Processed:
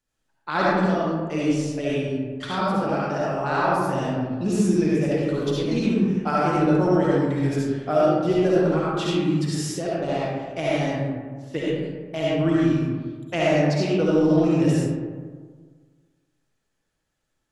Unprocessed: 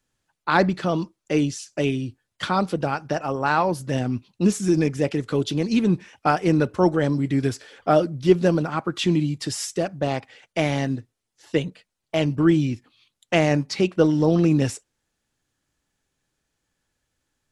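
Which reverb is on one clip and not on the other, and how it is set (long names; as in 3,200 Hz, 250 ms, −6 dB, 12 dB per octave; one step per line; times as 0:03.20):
comb and all-pass reverb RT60 1.6 s, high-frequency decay 0.4×, pre-delay 30 ms, DRR −7 dB
level −8 dB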